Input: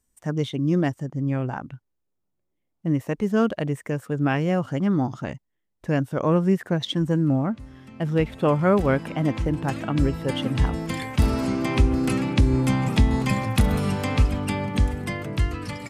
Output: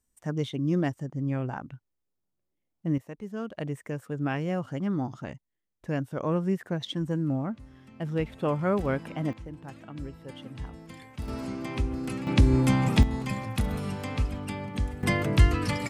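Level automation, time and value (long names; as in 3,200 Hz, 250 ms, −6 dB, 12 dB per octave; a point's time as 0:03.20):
−4.5 dB
from 0:02.98 −14.5 dB
from 0:03.55 −7 dB
from 0:09.33 −17 dB
from 0:11.28 −10 dB
from 0:12.27 −1 dB
from 0:13.03 −8.5 dB
from 0:15.03 +4 dB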